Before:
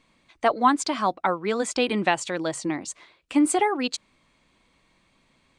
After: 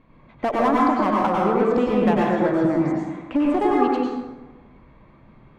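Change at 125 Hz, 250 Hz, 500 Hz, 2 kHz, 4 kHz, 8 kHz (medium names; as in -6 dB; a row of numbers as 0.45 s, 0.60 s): +10.0 dB, +6.0 dB, +6.0 dB, -1.5 dB, -8.5 dB, under -20 dB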